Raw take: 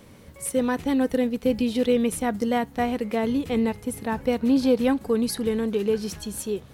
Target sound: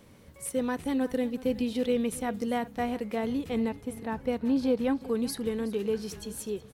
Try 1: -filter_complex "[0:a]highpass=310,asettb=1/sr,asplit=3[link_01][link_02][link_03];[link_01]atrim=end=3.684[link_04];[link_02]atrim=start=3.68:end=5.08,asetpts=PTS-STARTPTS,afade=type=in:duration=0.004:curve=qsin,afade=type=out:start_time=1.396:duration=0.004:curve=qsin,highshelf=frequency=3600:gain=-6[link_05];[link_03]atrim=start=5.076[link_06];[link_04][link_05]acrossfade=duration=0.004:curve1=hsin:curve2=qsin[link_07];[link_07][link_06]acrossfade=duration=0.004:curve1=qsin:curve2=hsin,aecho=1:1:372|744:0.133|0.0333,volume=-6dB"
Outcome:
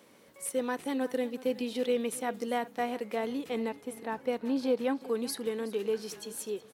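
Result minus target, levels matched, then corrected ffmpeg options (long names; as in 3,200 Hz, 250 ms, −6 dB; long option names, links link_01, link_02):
250 Hz band −2.5 dB
-filter_complex "[0:a]asettb=1/sr,asplit=3[link_01][link_02][link_03];[link_01]atrim=end=3.684[link_04];[link_02]atrim=start=3.68:end=5.08,asetpts=PTS-STARTPTS,afade=type=in:duration=0.004:curve=qsin,afade=type=out:start_time=1.396:duration=0.004:curve=qsin,highshelf=frequency=3600:gain=-6[link_05];[link_03]atrim=start=5.076[link_06];[link_04][link_05]acrossfade=duration=0.004:curve1=hsin:curve2=qsin[link_07];[link_07][link_06]acrossfade=duration=0.004:curve1=qsin:curve2=hsin,aecho=1:1:372|744:0.133|0.0333,volume=-6dB"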